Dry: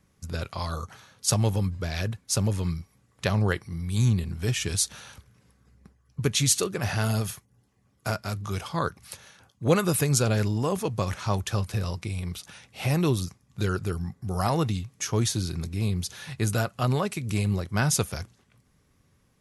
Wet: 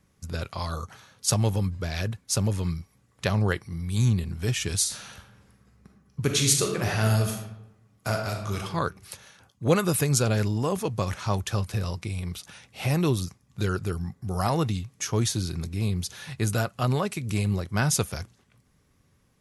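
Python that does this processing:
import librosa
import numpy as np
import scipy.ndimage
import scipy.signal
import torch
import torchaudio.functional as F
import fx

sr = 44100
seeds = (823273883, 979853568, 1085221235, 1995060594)

y = fx.reverb_throw(x, sr, start_s=4.78, length_s=3.82, rt60_s=0.92, drr_db=2.0)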